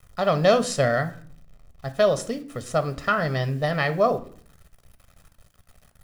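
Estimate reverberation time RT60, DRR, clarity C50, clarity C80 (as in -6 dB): 0.50 s, 10.5 dB, 15.5 dB, 20.0 dB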